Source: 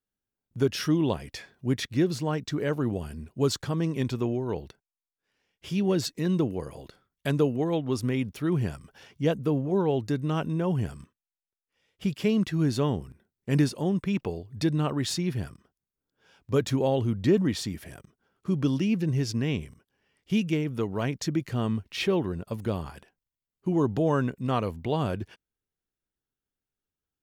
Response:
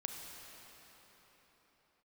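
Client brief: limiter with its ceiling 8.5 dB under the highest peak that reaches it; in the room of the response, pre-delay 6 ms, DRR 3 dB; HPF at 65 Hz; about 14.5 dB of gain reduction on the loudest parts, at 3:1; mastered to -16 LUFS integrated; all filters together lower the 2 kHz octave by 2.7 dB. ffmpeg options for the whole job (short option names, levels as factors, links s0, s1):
-filter_complex "[0:a]highpass=65,equalizer=f=2000:t=o:g=-3.5,acompressor=threshold=0.0112:ratio=3,alimiter=level_in=2.66:limit=0.0631:level=0:latency=1,volume=0.376,asplit=2[s0][s1];[1:a]atrim=start_sample=2205,adelay=6[s2];[s1][s2]afir=irnorm=-1:irlink=0,volume=0.75[s3];[s0][s3]amix=inputs=2:normalize=0,volume=16.8"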